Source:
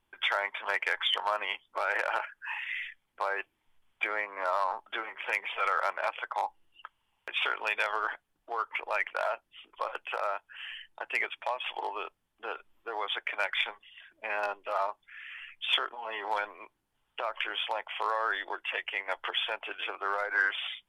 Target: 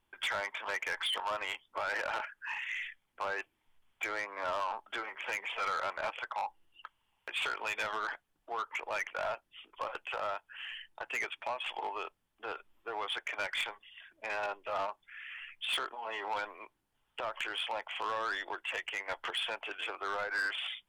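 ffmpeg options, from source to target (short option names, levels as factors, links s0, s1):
-af "asoftclip=type=tanh:threshold=0.0422,volume=0.891"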